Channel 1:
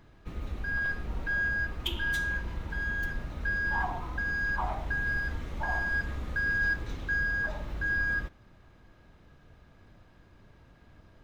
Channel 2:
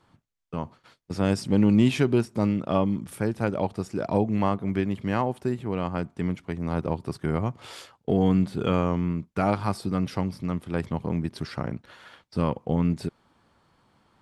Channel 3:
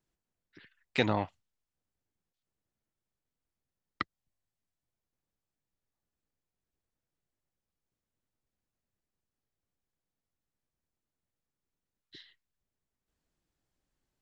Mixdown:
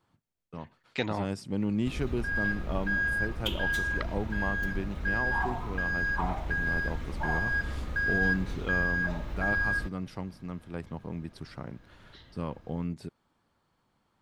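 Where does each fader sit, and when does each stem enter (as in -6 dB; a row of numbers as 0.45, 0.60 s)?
+0.5, -10.0, -3.0 dB; 1.60, 0.00, 0.00 s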